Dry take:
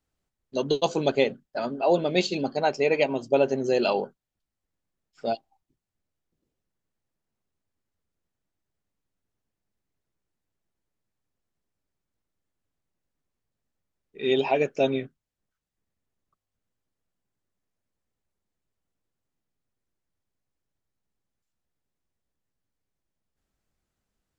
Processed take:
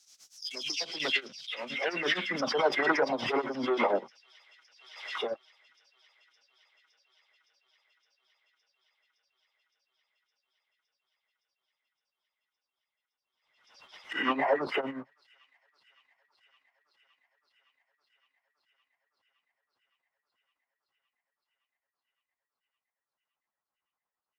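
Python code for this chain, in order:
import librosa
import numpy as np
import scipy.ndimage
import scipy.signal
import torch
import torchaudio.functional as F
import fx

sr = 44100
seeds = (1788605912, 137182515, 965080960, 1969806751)

y = fx.spec_delay(x, sr, highs='early', ms=169)
y = fx.high_shelf(y, sr, hz=6600.0, db=6.0)
y = fx.leveller(y, sr, passes=2)
y = fx.formant_shift(y, sr, semitones=-4)
y = y * (1.0 - 0.92 / 2.0 + 0.92 / 2.0 * np.cos(2.0 * np.pi * 8.6 * (np.arange(len(y)) / sr)))
y = fx.filter_sweep_bandpass(y, sr, from_hz=5700.0, to_hz=1000.0, start_s=0.73, end_s=2.64, q=2.9)
y = fx.echo_wet_highpass(y, sr, ms=564, feedback_pct=80, hz=3600.0, wet_db=-18)
y = fx.pre_swell(y, sr, db_per_s=64.0)
y = y * librosa.db_to_amplitude(7.5)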